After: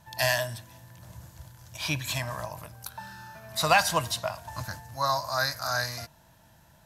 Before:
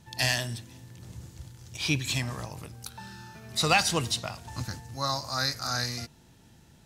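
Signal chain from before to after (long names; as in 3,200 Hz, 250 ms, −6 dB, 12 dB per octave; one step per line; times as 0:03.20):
thirty-one-band graphic EQ 250 Hz −7 dB, 400 Hz −11 dB, 630 Hz +12 dB, 1,000 Hz +11 dB, 1,600 Hz +8 dB, 12,500 Hz +12 dB
level −2.5 dB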